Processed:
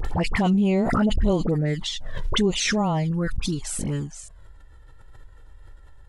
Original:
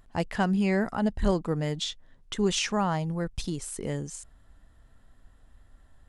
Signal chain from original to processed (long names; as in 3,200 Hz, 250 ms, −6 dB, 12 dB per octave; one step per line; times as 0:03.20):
high-shelf EQ 5,800 Hz −6 dB
all-pass dispersion highs, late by 50 ms, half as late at 1,300 Hz
flanger swept by the level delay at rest 2.4 ms, full sweep at −22.5 dBFS
in parallel at +1.5 dB: brickwall limiter −23 dBFS, peak gain reduction 9.5 dB
on the sum: background raised ahead of every attack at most 25 dB per second